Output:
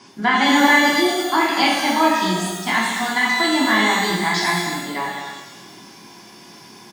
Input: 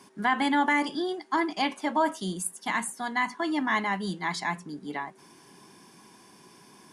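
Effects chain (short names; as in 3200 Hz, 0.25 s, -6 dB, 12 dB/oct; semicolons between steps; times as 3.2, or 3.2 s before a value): LPF 6000 Hz 24 dB/oct; high shelf 3500 Hz +9.5 dB; echo 0.22 s -9.5 dB; shimmer reverb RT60 1 s, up +12 st, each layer -8 dB, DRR -3 dB; gain +4 dB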